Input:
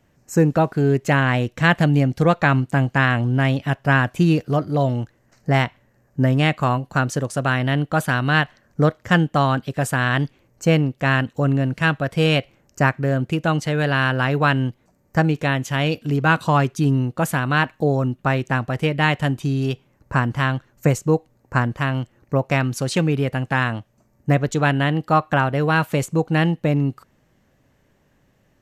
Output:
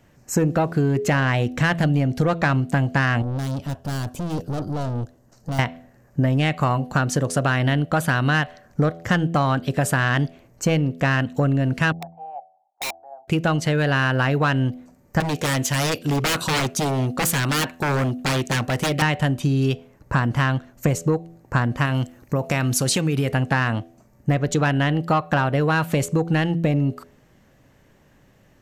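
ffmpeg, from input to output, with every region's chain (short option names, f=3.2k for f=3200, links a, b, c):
-filter_complex "[0:a]asettb=1/sr,asplit=3[a][b][c];[a]atrim=end=3.224[d];[b]atrim=start=3.22:end=5.59,asetpts=PTS-STARTPTS,afade=t=in:d=0.004:c=qsin,afade=t=out:st=2.366:d=0.004:c=qsin,aeval=exprs='(tanh(28.2*val(0)+0.4)-tanh(0.4))/28.2':c=same,equalizer=f=2.1k:w=1.2:g=-13[e];[c]atrim=start=5.586[f];[d][e]acrossfade=d=0.004:c1=hsin:c2=qsin[g];[g][f]acrossfade=d=0.004:c1=qsin:c2=hsin,asettb=1/sr,asplit=3[h][i][j];[h]atrim=end=11.924[k];[i]atrim=start=11.92:end=13.28,asetpts=PTS-STARTPTS,afade=t=in:d=0.004:c=qsin,afade=t=out:st=1.356:d=0.004:c=qsin,asuperpass=centerf=790:order=4:qfactor=7.7,aeval=exprs='(mod(26.6*val(0)+1,2)-1)/26.6':c=same[l];[j]atrim=start=13.276[m];[k][l]acrossfade=d=0.004:c1=hsin:c2=qsin[n];[n][m]acrossfade=d=0.004:c1=qsin:c2=hsin,asettb=1/sr,asplit=3[o][p][q];[o]atrim=end=15.204[r];[p]atrim=start=15.2:end=19.02,asetpts=PTS-STARTPTS,afade=t=in:d=0.004:c=qsin,afade=t=out:st=3.816:d=0.004:c=qsin,bass=f=250:g=-4,treble=f=4k:g=6,aeval=exprs='0.0944*(abs(mod(val(0)/0.0944+3,4)-2)-1)':c=same[s];[q]atrim=start=19.016[t];[r][s]acrossfade=d=0.004:c1=hsin:c2=qsin[u];[u][t]acrossfade=d=0.004:c1=qsin:c2=hsin,asettb=1/sr,asplit=3[v][w][x];[v]atrim=end=21.854[y];[w]atrim=start=21.85:end=23.32,asetpts=PTS-STARTPTS,afade=t=in:d=0.004:c=qsin,afade=t=out:st=1.466:d=0.004:c=qsin,highshelf=f=4.9k:g=10.5,acompressor=threshold=-20dB:ratio=6:attack=3.2:release=140:knee=1:detection=peak[z];[x]atrim=start=23.316[aa];[y][z]acrossfade=d=0.004:c1=hsin:c2=qsin[ab];[ab][aa]acrossfade=d=0.004:c1=qsin:c2=hsin,acontrast=83,bandreject=f=83.51:t=h:w=4,bandreject=f=167.02:t=h:w=4,bandreject=f=250.53:t=h:w=4,bandreject=f=334.04:t=h:w=4,bandreject=f=417.55:t=h:w=4,bandreject=f=501.06:t=h:w=4,bandreject=f=584.57:t=h:w=4,bandreject=f=668.08:t=h:w=4,bandreject=f=751.59:t=h:w=4,acompressor=threshold=-15dB:ratio=6,volume=-1.5dB"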